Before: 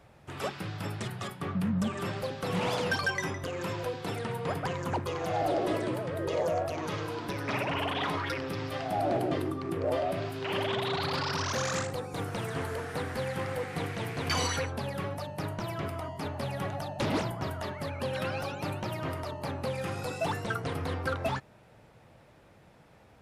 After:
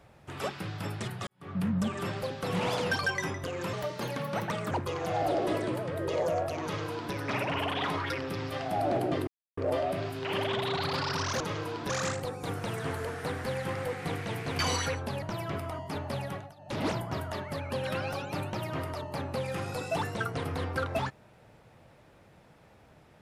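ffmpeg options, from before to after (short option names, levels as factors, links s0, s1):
-filter_complex "[0:a]asplit=11[s0][s1][s2][s3][s4][s5][s6][s7][s8][s9][s10];[s0]atrim=end=1.27,asetpts=PTS-STARTPTS,afade=t=out:st=1.266:d=0.004:c=hsin[s11];[s1]atrim=start=1.27:end=3.734,asetpts=PTS-STARTPTS,afade=t=in:d=0.33:c=qua[s12];[s2]atrim=start=3.73:end=4.91,asetpts=PTS-STARTPTS,asetrate=52920,aresample=44100[s13];[s3]atrim=start=4.906:end=9.47,asetpts=PTS-STARTPTS,afade=t=out:st=4.56:d=0.004:c=hsin[s14];[s4]atrim=start=9.47:end=9.77,asetpts=PTS-STARTPTS,volume=0[s15];[s5]atrim=start=9.77:end=11.602,asetpts=PTS-STARTPTS,afade=t=in:d=0.004:c=hsin[s16];[s6]atrim=start=6.828:end=7.322[s17];[s7]atrim=start=11.598:end=14.932[s18];[s8]atrim=start=15.518:end=16.84,asetpts=PTS-STARTPTS,afade=t=out:st=0.982:d=0.34:silence=0.1[s19];[s9]atrim=start=16.84:end=16.86,asetpts=PTS-STARTPTS,volume=0.1[s20];[s10]atrim=start=16.86,asetpts=PTS-STARTPTS,afade=t=in:d=0.34:silence=0.1[s21];[s11][s12]concat=n=2:v=0:a=1[s22];[s22][s13]acrossfade=d=0.004:c1=hsin:c2=hsin[s23];[s14][s15][s16]concat=n=3:v=0:a=1[s24];[s23][s24]acrossfade=d=0.004:c1=hsin:c2=hsin[s25];[s25][s17]acrossfade=d=0.004:c1=hsin:c2=hsin[s26];[s26][s18]acrossfade=d=0.004:c1=hsin:c2=hsin[s27];[s19][s20][s21]concat=n=3:v=0:a=1[s28];[s27][s28]acrossfade=d=0.004:c1=hsin:c2=hsin"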